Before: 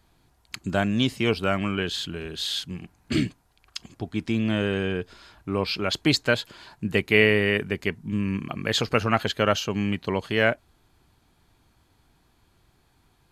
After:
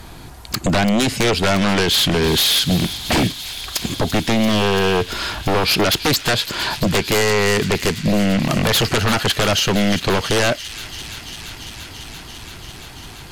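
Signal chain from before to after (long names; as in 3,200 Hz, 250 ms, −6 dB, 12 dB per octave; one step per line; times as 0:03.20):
downward compressor 4 to 1, threshold −34 dBFS, peak gain reduction 18 dB
sine wavefolder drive 19 dB, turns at −15 dBFS
on a send: delay with a high-pass on its return 340 ms, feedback 85%, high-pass 2,400 Hz, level −12 dB
on the sum: level +2.5 dB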